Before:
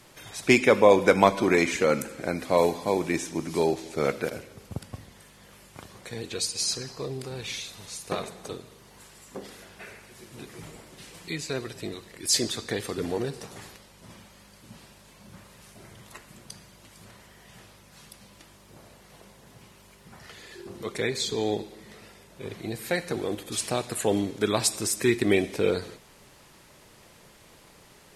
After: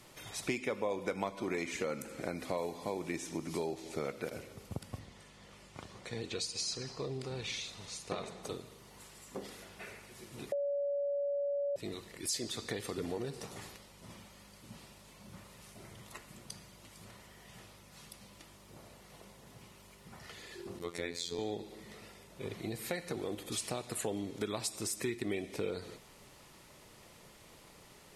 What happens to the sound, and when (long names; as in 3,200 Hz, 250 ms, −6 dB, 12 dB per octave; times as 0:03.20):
0:04.99–0:08.43: low-pass filter 7,300 Hz
0:10.52–0:11.76: beep over 568 Hz −19.5 dBFS
0:20.79–0:21.39: phases set to zero 85.9 Hz
whole clip: notch filter 1,600 Hz, Q 13; downward compressor 4 to 1, threshold −31 dBFS; level −3.5 dB